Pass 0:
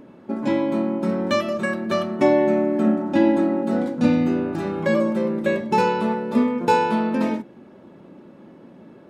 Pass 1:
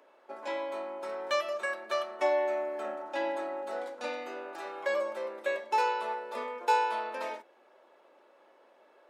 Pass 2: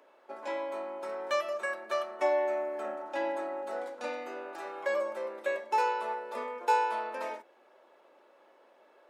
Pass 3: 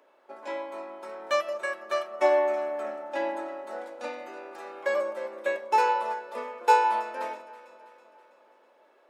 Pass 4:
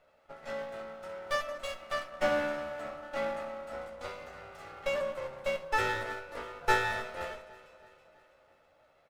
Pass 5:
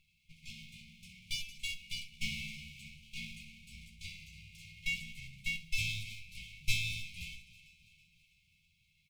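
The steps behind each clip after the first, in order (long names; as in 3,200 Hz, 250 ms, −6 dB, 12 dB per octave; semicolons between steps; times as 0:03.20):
high-pass filter 540 Hz 24 dB per octave; level −6.5 dB
dynamic equaliser 3,700 Hz, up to −5 dB, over −54 dBFS, Q 1.3
on a send: delay that swaps between a low-pass and a high-pass 163 ms, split 1,100 Hz, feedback 73%, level −11 dB; on the sum: expander for the loud parts 1.5 to 1, over −38 dBFS; level +7 dB
lower of the sound and its delayed copy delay 1.5 ms; on a send: ambience of single reflections 13 ms −6.5 dB, 67 ms −15 dB; on the sum: level −4 dB
linear-phase brick-wall band-stop 210–2,100 Hz; level +3.5 dB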